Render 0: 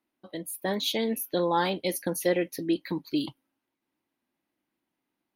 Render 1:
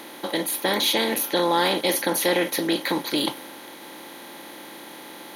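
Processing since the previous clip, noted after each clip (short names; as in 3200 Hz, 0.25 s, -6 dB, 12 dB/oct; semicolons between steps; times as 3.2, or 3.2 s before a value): per-bin compression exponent 0.4; in parallel at -2 dB: limiter -15.5 dBFS, peak gain reduction 8 dB; on the sum: low shelf 370 Hz -9.5 dB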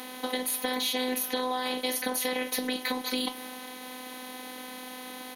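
comb 4.7 ms, depth 38%; compressor 5:1, threshold -26 dBFS, peak gain reduction 10 dB; robotiser 254 Hz; gain +1.5 dB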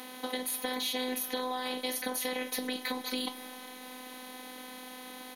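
Schroeder reverb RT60 3.9 s, combs from 27 ms, DRR 19 dB; gain -4 dB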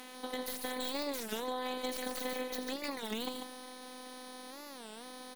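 tracing distortion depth 0.23 ms; loudspeakers at several distances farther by 29 m -11 dB, 50 m -5 dB; record warp 33 1/3 rpm, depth 250 cents; gain -6 dB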